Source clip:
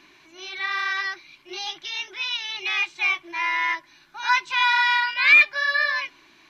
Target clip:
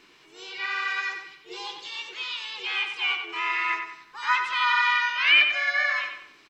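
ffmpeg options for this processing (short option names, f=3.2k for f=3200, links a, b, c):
-filter_complex "[0:a]asplit=2[a][b];[b]asetrate=55563,aresample=44100,atempo=0.793701,volume=-3dB[c];[a][c]amix=inputs=2:normalize=0,acrossover=split=3500[d][e];[e]acompressor=threshold=-40dB:ratio=4:attack=1:release=60[f];[d][f]amix=inputs=2:normalize=0,asplit=2[g][h];[h]adelay=93,lowpass=f=5k:p=1,volume=-6dB,asplit=2[i][j];[j]adelay=93,lowpass=f=5k:p=1,volume=0.42,asplit=2[k][l];[l]adelay=93,lowpass=f=5k:p=1,volume=0.42,asplit=2[m][n];[n]adelay=93,lowpass=f=5k:p=1,volume=0.42,asplit=2[o][p];[p]adelay=93,lowpass=f=5k:p=1,volume=0.42[q];[i][k][m][o][q]amix=inputs=5:normalize=0[r];[g][r]amix=inputs=2:normalize=0,volume=-4.5dB"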